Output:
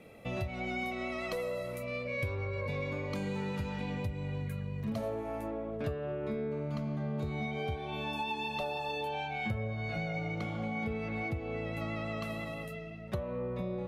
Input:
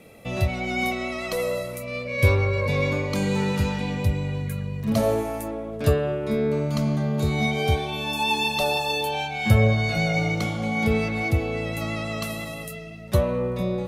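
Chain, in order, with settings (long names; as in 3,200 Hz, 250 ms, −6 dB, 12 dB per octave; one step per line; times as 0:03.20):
bass and treble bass −1 dB, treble −8 dB, from 0:05.08 treble −15 dB
downward compressor 6 to 1, threshold −28 dBFS, peak gain reduction 14.5 dB
level −4.5 dB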